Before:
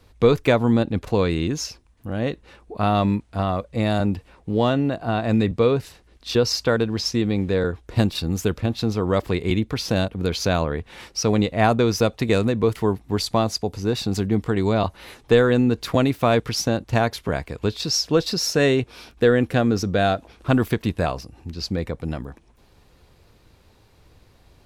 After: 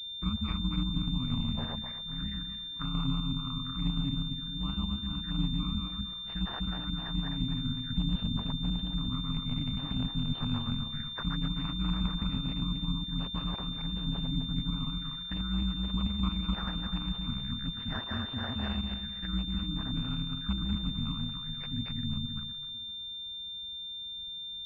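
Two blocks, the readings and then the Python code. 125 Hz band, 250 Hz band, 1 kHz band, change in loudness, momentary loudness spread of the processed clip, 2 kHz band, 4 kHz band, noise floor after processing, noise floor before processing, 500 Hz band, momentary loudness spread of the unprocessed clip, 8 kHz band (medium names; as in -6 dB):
-9.5 dB, -11.0 dB, -18.0 dB, -11.5 dB, 5 LU, -17.5 dB, -2.5 dB, -41 dBFS, -55 dBFS, -32.5 dB, 9 LU, under -35 dB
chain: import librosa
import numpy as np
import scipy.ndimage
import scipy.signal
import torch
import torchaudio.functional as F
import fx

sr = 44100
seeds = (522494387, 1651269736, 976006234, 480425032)

y = fx.reverse_delay_fb(x, sr, ms=128, feedback_pct=57, wet_db=-0.5)
y = scipy.signal.sosfilt(scipy.signal.ellip(3, 1.0, 40, [180.0, 1200.0], 'bandstop', fs=sr, output='sos'), y)
y = fx.env_flanger(y, sr, rest_ms=9.7, full_db=-22.5)
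y = y * np.sin(2.0 * np.pi * 67.0 * np.arange(len(y)) / sr)
y = fx.pwm(y, sr, carrier_hz=3600.0)
y = F.gain(torch.from_numpy(y), -5.0).numpy()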